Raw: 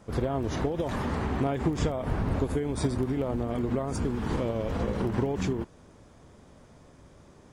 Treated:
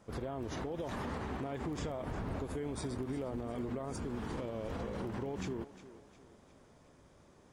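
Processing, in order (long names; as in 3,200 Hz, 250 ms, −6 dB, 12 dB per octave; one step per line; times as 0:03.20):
low-shelf EQ 190 Hz −4.5 dB
brickwall limiter −23.5 dBFS, peak gain reduction 6.5 dB
on a send: feedback echo with a high-pass in the loop 355 ms, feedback 49%, high-pass 190 Hz, level −15 dB
on the sum: level −6.5 dB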